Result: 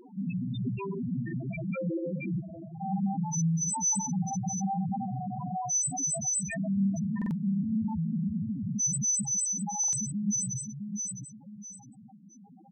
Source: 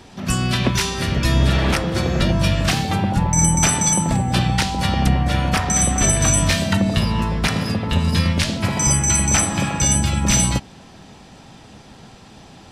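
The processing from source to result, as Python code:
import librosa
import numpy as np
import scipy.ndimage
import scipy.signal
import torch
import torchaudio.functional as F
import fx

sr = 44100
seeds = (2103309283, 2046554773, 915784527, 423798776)

y = fx.dynamic_eq(x, sr, hz=2300.0, q=4.3, threshold_db=-39.0, ratio=4.0, max_db=4)
y = fx.rider(y, sr, range_db=10, speed_s=2.0)
y = fx.high_shelf(y, sr, hz=4900.0, db=-3.0)
y = 10.0 ** (-17.0 / 20.0) * np.tanh(y / 10.0 ** (-17.0 / 20.0))
y = scipy.signal.sosfilt(scipy.signal.butter(2, 170.0, 'highpass', fs=sr, output='sos'), y)
y = fx.echo_feedback(y, sr, ms=659, feedback_pct=31, wet_db=-5.5)
y = fx.clip_hard(y, sr, threshold_db=-31.0, at=(2.4, 2.82))
y = fx.spec_topn(y, sr, count=2)
y = fx.buffer_glitch(y, sr, at_s=(7.17, 9.79), block=2048, repeats=2)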